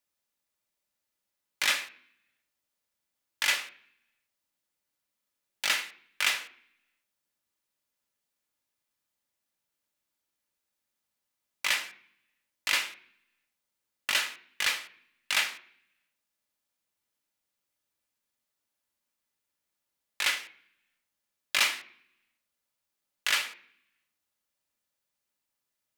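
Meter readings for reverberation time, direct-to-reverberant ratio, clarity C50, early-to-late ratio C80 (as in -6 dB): 0.60 s, 6.5 dB, 16.0 dB, 19.0 dB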